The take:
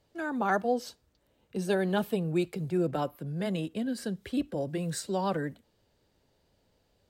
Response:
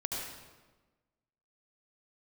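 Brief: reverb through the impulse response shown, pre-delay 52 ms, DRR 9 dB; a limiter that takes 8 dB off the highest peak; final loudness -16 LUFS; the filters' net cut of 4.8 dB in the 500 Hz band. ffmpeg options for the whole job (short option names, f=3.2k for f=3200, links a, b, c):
-filter_complex "[0:a]equalizer=f=500:t=o:g=-6.5,alimiter=level_in=1.5dB:limit=-24dB:level=0:latency=1,volume=-1.5dB,asplit=2[a][b];[1:a]atrim=start_sample=2205,adelay=52[c];[b][c]afir=irnorm=-1:irlink=0,volume=-12.5dB[d];[a][d]amix=inputs=2:normalize=0,volume=19dB"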